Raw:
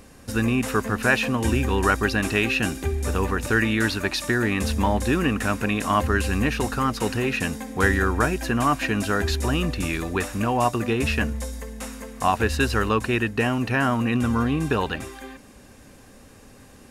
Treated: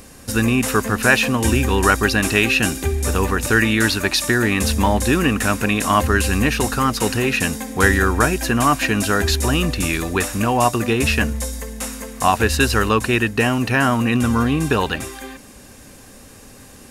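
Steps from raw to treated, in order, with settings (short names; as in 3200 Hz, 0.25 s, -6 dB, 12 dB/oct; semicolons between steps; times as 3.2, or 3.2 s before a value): high shelf 4300 Hz +7.5 dB; gain +4.5 dB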